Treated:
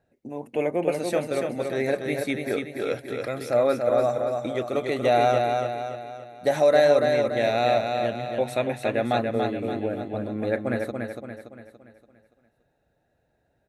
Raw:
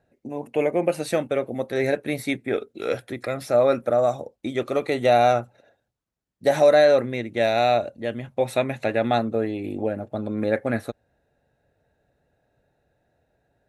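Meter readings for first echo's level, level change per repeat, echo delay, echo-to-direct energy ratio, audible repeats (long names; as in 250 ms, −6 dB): −4.5 dB, −6.5 dB, 286 ms, −3.5 dB, 5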